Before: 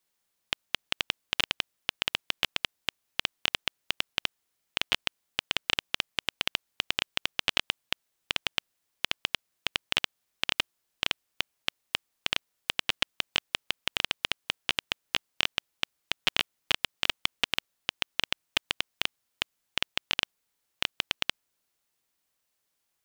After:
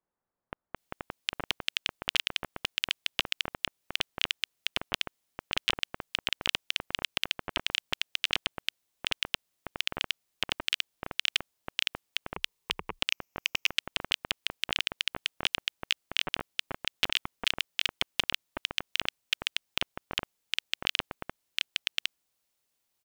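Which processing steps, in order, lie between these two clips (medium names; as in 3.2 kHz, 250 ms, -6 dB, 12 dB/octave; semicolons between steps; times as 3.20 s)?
12.34–12.99 s: rippled EQ curve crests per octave 0.78, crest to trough 11 dB; bands offset in time lows, highs 760 ms, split 1.5 kHz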